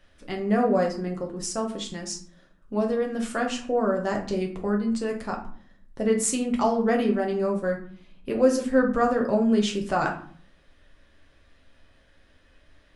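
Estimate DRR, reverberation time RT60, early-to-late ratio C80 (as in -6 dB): 0.0 dB, 0.55 s, 13.0 dB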